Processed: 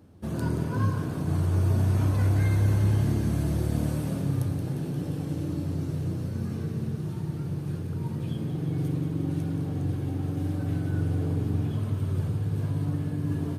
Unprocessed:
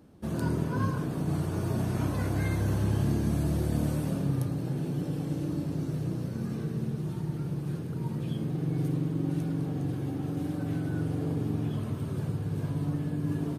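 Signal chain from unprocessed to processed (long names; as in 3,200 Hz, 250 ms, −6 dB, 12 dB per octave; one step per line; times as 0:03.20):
parametric band 93 Hz +13 dB 0.28 octaves
delay with a high-pass on its return 176 ms, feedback 78%, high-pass 1,400 Hz, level −10 dB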